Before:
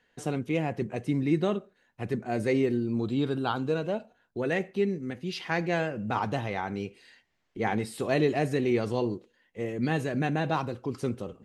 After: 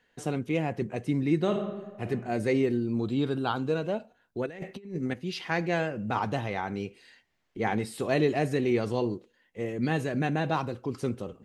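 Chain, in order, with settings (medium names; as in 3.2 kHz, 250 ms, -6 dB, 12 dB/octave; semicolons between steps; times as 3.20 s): 1.38–2.07 s: reverb throw, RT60 1.3 s, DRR 4.5 dB; 4.46–5.14 s: compressor with a negative ratio -34 dBFS, ratio -0.5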